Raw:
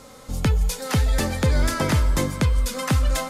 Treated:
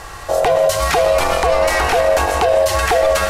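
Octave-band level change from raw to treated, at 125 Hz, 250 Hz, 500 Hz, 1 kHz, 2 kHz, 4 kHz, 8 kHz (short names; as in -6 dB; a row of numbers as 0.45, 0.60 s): -6.5, -5.0, +17.0, +14.5, +10.5, +7.5, +6.0 dB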